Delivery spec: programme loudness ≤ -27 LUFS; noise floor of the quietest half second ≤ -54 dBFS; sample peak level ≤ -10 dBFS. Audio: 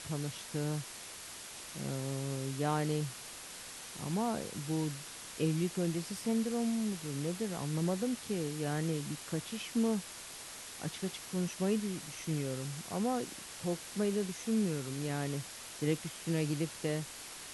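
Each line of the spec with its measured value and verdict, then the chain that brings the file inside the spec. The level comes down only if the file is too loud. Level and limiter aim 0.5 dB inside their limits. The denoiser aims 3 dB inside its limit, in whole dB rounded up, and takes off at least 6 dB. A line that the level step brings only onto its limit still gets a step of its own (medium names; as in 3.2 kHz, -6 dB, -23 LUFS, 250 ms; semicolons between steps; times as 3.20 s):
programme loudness -36.5 LUFS: pass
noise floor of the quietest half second -47 dBFS: fail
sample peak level -19.0 dBFS: pass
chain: noise reduction 10 dB, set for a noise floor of -47 dBFS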